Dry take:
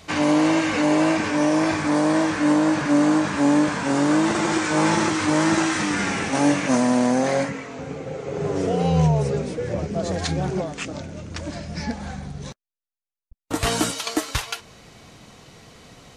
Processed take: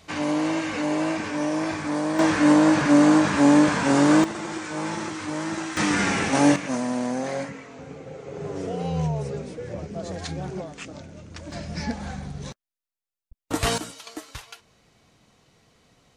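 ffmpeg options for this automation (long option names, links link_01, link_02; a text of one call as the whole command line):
ffmpeg -i in.wav -af "asetnsamples=nb_out_samples=441:pad=0,asendcmd='2.19 volume volume 2dB;4.24 volume volume -10dB;5.77 volume volume 1dB;6.56 volume volume -7.5dB;11.52 volume volume -1dB;13.78 volume volume -13.5dB',volume=-6dB" out.wav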